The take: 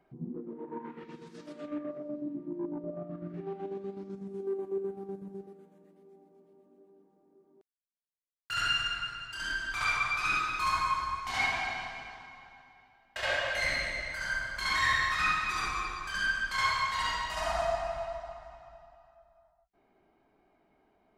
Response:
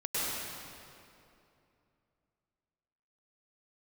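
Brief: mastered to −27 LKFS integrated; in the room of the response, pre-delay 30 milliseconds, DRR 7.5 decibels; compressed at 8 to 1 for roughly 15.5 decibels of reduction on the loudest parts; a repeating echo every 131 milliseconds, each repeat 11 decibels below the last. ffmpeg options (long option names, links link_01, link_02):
-filter_complex "[0:a]acompressor=threshold=-41dB:ratio=8,aecho=1:1:131|262|393:0.282|0.0789|0.0221,asplit=2[link_01][link_02];[1:a]atrim=start_sample=2205,adelay=30[link_03];[link_02][link_03]afir=irnorm=-1:irlink=0,volume=-15.5dB[link_04];[link_01][link_04]amix=inputs=2:normalize=0,volume=16dB"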